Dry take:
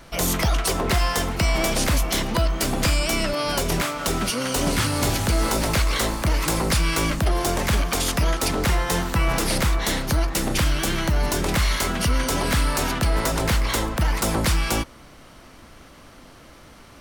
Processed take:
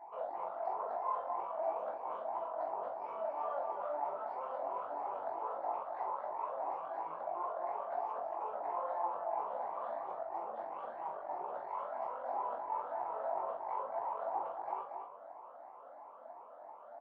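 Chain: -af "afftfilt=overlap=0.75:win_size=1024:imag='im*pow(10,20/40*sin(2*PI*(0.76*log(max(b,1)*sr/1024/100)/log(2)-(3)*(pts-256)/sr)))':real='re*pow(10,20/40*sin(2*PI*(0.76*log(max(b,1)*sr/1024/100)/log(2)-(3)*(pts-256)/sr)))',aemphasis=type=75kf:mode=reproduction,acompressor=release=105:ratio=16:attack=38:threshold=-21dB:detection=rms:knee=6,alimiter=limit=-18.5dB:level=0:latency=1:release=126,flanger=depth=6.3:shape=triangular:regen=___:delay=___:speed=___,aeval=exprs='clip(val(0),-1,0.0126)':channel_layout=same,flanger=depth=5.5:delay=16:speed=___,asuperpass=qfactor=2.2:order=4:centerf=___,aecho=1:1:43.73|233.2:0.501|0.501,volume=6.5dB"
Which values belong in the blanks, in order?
-75, 6.6, 0.48, 2, 780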